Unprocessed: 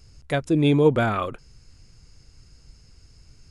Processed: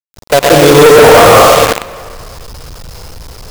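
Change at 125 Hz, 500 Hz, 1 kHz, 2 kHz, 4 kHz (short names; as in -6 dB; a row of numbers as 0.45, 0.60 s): +9.5, +20.0, +23.0, +21.0, +24.0 dB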